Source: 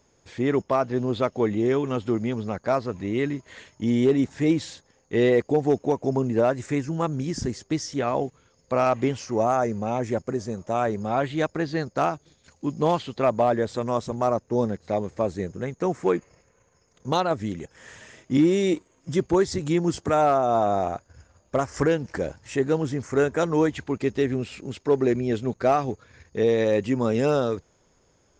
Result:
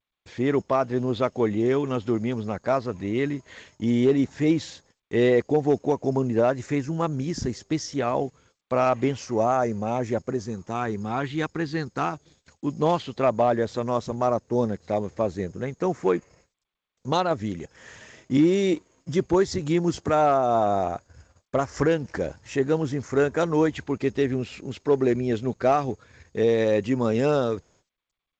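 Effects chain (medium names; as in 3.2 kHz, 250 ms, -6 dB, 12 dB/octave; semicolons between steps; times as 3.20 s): gate -56 dBFS, range -55 dB; 10.40–12.13 s: peaking EQ 600 Hz -14 dB 0.38 oct; G.722 64 kbps 16 kHz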